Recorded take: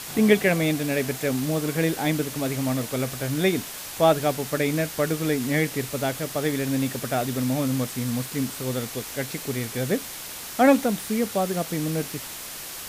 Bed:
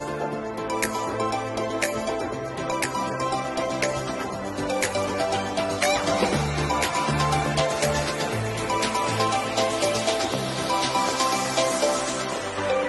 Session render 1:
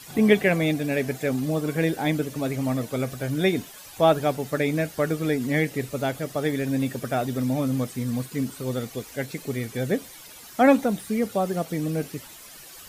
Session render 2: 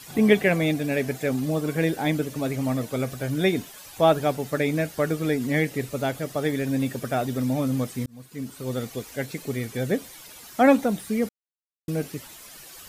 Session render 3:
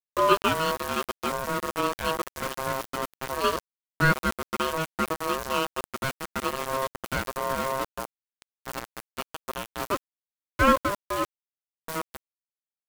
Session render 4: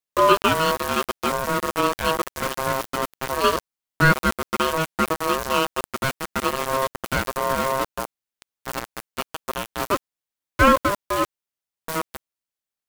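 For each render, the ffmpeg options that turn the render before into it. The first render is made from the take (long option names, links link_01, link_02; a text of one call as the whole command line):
ffmpeg -i in.wav -af "afftdn=noise_reduction=12:noise_floor=-37" out.wav
ffmpeg -i in.wav -filter_complex "[0:a]asplit=4[link_01][link_02][link_03][link_04];[link_01]atrim=end=8.06,asetpts=PTS-STARTPTS,afade=type=out:start_time=8.056:duration=0.004:curve=hsin[link_05];[link_02]atrim=start=8.06:end=11.29,asetpts=PTS-STARTPTS,afade=type=in:duration=0.74,afade=type=out:start_time=3.226:duration=0.004:curve=hsin[link_06];[link_03]atrim=start=11.29:end=11.88,asetpts=PTS-STARTPTS,volume=0[link_07];[link_04]atrim=start=11.88,asetpts=PTS-STARTPTS,afade=type=in:duration=0.004:curve=hsin[link_08];[link_05][link_06][link_07][link_08]concat=n=4:v=0:a=1" out.wav
ffmpeg -i in.wav -af "aeval=exprs='val(0)*gte(abs(val(0)),0.0668)':channel_layout=same,aeval=exprs='val(0)*sin(2*PI*800*n/s)':channel_layout=same" out.wav
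ffmpeg -i in.wav -af "volume=5.5dB,alimiter=limit=-3dB:level=0:latency=1" out.wav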